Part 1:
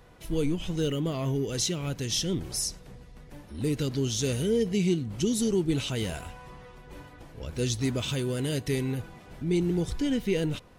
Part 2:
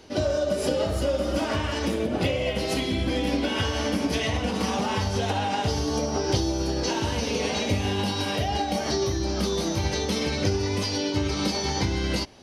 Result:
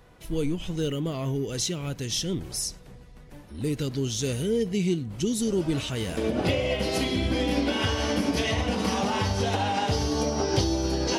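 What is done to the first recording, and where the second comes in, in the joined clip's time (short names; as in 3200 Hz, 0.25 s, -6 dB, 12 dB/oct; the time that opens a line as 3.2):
part 1
5.47 add part 2 from 1.23 s 0.70 s -14 dB
6.17 switch to part 2 from 1.93 s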